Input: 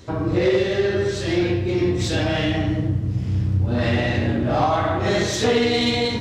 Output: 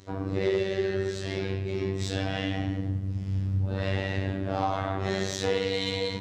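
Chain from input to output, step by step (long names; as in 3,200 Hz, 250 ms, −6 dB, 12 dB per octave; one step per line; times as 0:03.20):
phases set to zero 96.3 Hz
level −6.5 dB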